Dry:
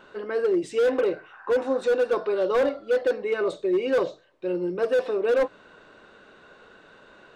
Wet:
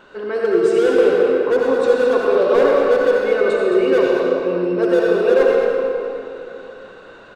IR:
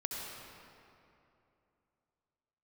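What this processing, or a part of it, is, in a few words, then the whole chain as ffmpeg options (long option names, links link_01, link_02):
cave: -filter_complex "[0:a]aecho=1:1:216:0.398[link_01];[1:a]atrim=start_sample=2205[link_02];[link_01][link_02]afir=irnorm=-1:irlink=0,volume=6dB"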